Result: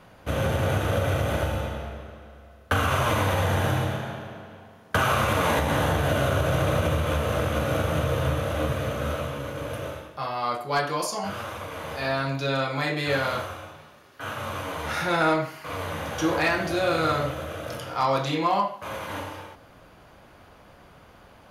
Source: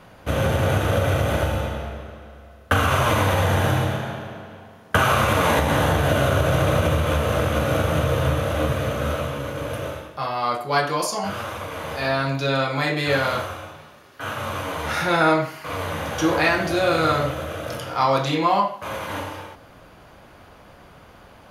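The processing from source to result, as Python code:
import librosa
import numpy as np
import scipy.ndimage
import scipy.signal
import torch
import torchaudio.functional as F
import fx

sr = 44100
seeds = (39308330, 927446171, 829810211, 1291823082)

y = np.clip(10.0 ** (10.5 / 20.0) * x, -1.0, 1.0) / 10.0 ** (10.5 / 20.0)
y = y * librosa.db_to_amplitude(-4.0)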